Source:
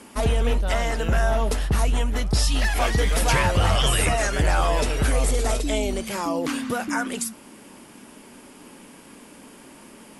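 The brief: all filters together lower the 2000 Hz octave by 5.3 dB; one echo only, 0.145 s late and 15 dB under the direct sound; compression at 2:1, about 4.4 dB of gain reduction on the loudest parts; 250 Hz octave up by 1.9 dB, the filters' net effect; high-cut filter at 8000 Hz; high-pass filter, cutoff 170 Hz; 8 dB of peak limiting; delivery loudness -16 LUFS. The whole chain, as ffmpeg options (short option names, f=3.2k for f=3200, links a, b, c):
-af "highpass=170,lowpass=8k,equalizer=f=250:t=o:g=3.5,equalizer=f=2k:t=o:g=-7,acompressor=threshold=-28dB:ratio=2,alimiter=limit=-23.5dB:level=0:latency=1,aecho=1:1:145:0.178,volume=16.5dB"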